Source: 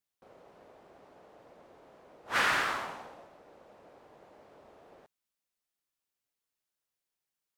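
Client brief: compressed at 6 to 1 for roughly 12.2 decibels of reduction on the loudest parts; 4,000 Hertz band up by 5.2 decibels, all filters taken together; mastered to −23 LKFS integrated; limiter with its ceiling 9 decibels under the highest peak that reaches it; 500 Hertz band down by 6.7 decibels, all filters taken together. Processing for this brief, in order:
parametric band 500 Hz −9 dB
parametric band 4,000 Hz +7 dB
downward compressor 6 to 1, threshold −36 dBFS
level +27 dB
brickwall limiter −7.5 dBFS

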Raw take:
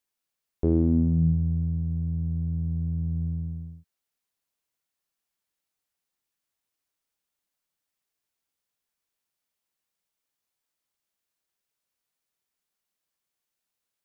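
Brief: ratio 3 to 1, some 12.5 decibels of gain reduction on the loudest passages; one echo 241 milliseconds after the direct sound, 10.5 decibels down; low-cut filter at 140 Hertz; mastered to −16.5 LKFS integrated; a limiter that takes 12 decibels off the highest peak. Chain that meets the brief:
high-pass filter 140 Hz
downward compressor 3 to 1, threshold −37 dBFS
brickwall limiter −34 dBFS
single-tap delay 241 ms −10.5 dB
level +25 dB

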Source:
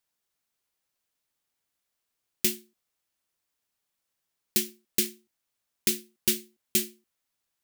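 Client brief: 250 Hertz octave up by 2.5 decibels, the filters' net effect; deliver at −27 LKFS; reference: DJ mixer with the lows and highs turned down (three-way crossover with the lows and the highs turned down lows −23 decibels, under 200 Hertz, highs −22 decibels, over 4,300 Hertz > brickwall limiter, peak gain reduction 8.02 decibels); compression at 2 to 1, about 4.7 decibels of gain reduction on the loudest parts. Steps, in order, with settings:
parametric band 250 Hz +7.5 dB
downward compressor 2 to 1, threshold −27 dBFS
three-way crossover with the lows and the highs turned down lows −23 dB, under 200 Hz, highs −22 dB, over 4,300 Hz
level +16.5 dB
brickwall limiter −10 dBFS

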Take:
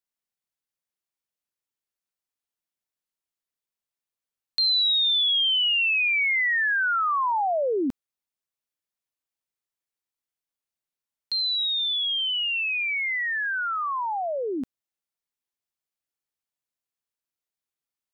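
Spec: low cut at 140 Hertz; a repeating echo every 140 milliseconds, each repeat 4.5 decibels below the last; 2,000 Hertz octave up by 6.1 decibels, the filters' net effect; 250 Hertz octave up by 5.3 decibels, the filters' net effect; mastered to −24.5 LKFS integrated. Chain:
high-pass filter 140 Hz
parametric band 250 Hz +7 dB
parametric band 2,000 Hz +7.5 dB
repeating echo 140 ms, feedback 60%, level −4.5 dB
level −8 dB

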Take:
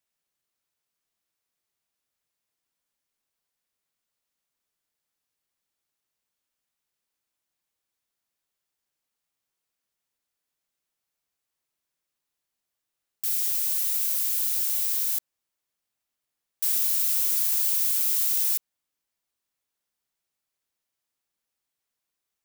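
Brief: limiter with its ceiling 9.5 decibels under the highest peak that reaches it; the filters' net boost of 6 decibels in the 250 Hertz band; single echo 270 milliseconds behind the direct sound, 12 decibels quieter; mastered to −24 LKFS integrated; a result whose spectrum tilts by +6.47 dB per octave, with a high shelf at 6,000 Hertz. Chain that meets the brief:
parametric band 250 Hz +8 dB
high-shelf EQ 6,000 Hz +8 dB
brickwall limiter −12.5 dBFS
single-tap delay 270 ms −12 dB
level −4.5 dB

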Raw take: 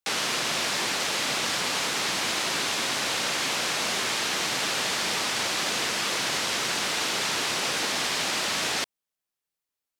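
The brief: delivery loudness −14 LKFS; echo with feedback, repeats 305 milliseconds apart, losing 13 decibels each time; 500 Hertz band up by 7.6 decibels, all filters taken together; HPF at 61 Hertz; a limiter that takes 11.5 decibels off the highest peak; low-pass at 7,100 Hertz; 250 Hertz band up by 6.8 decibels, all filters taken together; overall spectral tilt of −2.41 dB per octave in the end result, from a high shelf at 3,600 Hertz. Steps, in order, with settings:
high-pass filter 61 Hz
low-pass filter 7,100 Hz
parametric band 250 Hz +6 dB
parametric band 500 Hz +8 dB
high-shelf EQ 3,600 Hz −5.5 dB
brickwall limiter −25 dBFS
repeating echo 305 ms, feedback 22%, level −13 dB
level +18.5 dB

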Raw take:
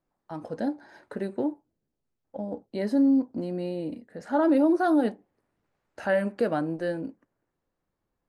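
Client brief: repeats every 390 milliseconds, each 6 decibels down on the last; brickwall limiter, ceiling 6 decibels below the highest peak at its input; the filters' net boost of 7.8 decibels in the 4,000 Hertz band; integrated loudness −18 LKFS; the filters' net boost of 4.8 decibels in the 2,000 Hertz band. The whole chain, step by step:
parametric band 2,000 Hz +5 dB
parametric band 4,000 Hz +8 dB
brickwall limiter −17.5 dBFS
repeating echo 390 ms, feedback 50%, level −6 dB
level +10.5 dB

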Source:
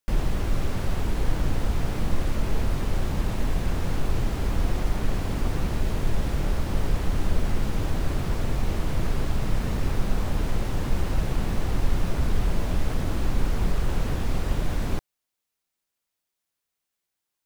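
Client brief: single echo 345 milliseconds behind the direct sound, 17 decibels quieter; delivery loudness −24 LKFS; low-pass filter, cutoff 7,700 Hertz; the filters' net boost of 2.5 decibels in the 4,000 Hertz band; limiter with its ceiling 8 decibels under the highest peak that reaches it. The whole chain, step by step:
low-pass filter 7,700 Hz
parametric band 4,000 Hz +3.5 dB
brickwall limiter −17.5 dBFS
single-tap delay 345 ms −17 dB
level +7 dB

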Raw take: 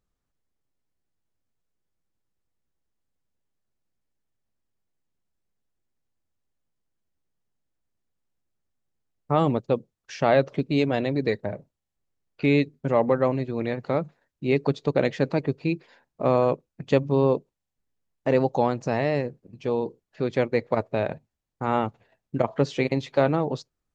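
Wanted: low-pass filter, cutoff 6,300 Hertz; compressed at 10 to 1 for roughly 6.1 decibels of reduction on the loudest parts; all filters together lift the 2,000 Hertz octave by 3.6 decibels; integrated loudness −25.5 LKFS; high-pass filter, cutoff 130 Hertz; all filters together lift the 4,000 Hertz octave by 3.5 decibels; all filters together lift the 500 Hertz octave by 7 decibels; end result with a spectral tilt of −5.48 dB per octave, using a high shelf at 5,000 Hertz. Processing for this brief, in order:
high-pass filter 130 Hz
low-pass filter 6,300 Hz
parametric band 500 Hz +8 dB
parametric band 2,000 Hz +3.5 dB
parametric band 4,000 Hz +6 dB
high-shelf EQ 5,000 Hz −6.5 dB
downward compressor 10 to 1, threshold −15 dBFS
level −2 dB

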